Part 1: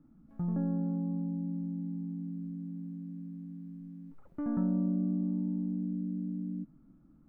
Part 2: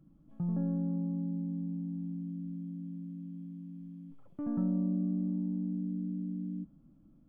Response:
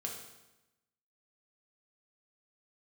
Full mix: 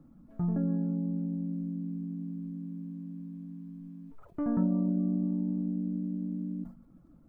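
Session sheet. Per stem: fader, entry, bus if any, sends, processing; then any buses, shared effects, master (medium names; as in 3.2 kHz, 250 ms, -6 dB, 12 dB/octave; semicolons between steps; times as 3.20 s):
+2.5 dB, 0.00 s, send -11.5 dB, none
-4.5 dB, 0.00 s, no send, high-order bell 720 Hz +13 dB; compression, threshold -33 dBFS, peak gain reduction 7 dB; comb of notches 200 Hz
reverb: on, RT60 1.0 s, pre-delay 3 ms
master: de-hum 104.2 Hz, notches 16; reverb removal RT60 0.53 s; decay stretcher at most 140 dB/s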